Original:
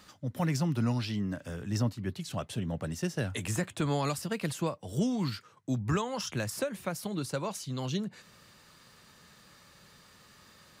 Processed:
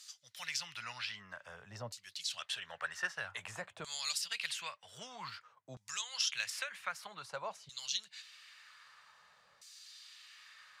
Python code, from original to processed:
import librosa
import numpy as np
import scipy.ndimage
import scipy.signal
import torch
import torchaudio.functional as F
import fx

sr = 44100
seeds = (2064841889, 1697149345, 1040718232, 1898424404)

y = fx.tone_stack(x, sr, knobs='10-0-10')
y = fx.filter_lfo_bandpass(y, sr, shape='saw_down', hz=0.52, low_hz=480.0, high_hz=6800.0, q=1.3)
y = fx.spec_box(y, sr, start_s=2.41, length_s=0.71, low_hz=330.0, high_hz=1900.0, gain_db=8)
y = y * librosa.db_to_amplitude(9.5)